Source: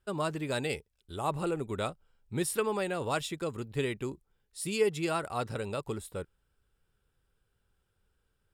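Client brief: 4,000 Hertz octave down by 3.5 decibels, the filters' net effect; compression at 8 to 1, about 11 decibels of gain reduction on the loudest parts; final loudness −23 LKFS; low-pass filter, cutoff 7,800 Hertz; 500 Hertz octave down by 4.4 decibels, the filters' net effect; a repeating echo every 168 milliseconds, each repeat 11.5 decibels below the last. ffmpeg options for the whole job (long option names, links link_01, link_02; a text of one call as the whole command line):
ffmpeg -i in.wav -af "lowpass=7800,equalizer=frequency=500:width_type=o:gain=-5.5,equalizer=frequency=4000:width_type=o:gain=-4,acompressor=threshold=-38dB:ratio=8,aecho=1:1:168|336|504:0.266|0.0718|0.0194,volume=20dB" out.wav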